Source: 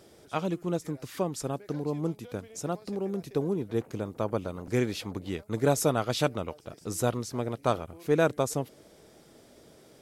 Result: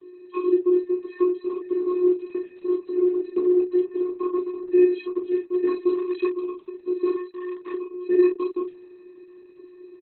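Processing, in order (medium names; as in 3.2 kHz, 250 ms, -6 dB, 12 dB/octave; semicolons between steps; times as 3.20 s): octave divider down 2 oct, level +4 dB; vocoder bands 16, square 360 Hz; 3.31–4.45 s: dynamic bell 720 Hz, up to +7 dB, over -54 dBFS, Q 3.5; in parallel at -1 dB: compression 12:1, threshold -34 dBFS, peak gain reduction 15.5 dB; 1.89–2.30 s: on the sum: treble shelf 2 kHz +7 dB; 7.16–7.74 s: overload inside the chain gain 34.5 dB; on a send: early reflections 23 ms -10 dB, 44 ms -7.5 dB; on the sum: trim +4 dB; Opus 8 kbps 48 kHz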